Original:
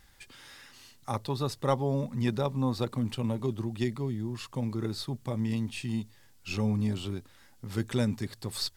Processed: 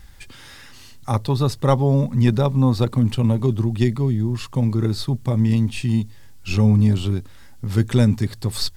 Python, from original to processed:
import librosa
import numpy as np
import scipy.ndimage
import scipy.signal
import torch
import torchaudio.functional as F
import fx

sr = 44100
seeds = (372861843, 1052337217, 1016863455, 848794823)

y = fx.low_shelf(x, sr, hz=150.0, db=11.5)
y = y * 10.0 ** (7.5 / 20.0)